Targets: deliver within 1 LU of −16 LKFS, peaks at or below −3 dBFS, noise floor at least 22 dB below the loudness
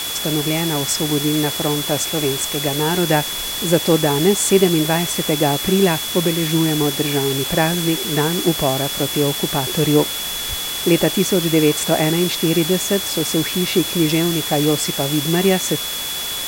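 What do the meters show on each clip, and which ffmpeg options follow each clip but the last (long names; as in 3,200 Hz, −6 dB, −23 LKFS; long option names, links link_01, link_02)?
interfering tone 3,400 Hz; level of the tone −26 dBFS; background noise floor −25 dBFS; target noise floor −40 dBFS; integrated loudness −17.5 LKFS; sample peak −2.0 dBFS; target loudness −16.0 LKFS
→ -af "bandreject=frequency=3400:width=30"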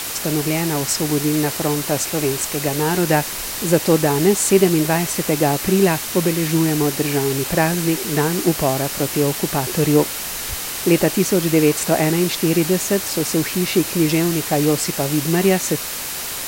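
interfering tone none found; background noise floor −27 dBFS; target noise floor −41 dBFS
→ -af "afftdn=noise_reduction=14:noise_floor=-27"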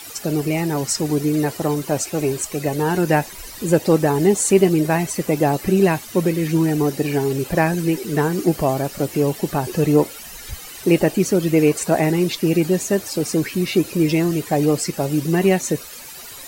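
background noise floor −37 dBFS; target noise floor −42 dBFS
→ -af "afftdn=noise_reduction=6:noise_floor=-37"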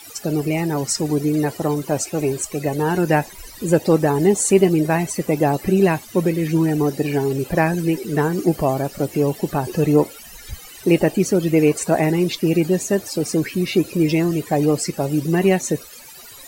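background noise floor −40 dBFS; target noise floor −42 dBFS
→ -af "afftdn=noise_reduction=6:noise_floor=-40"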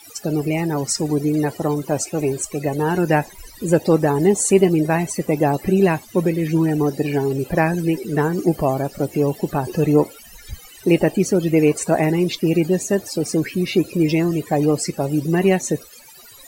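background noise floor −43 dBFS; integrated loudness −19.5 LKFS; sample peak −2.5 dBFS; target loudness −16.0 LKFS
→ -af "volume=3.5dB,alimiter=limit=-3dB:level=0:latency=1"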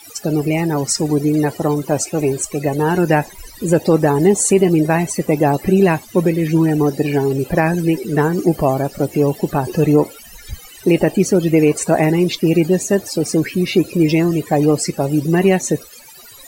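integrated loudness −16.5 LKFS; sample peak −3.0 dBFS; background noise floor −40 dBFS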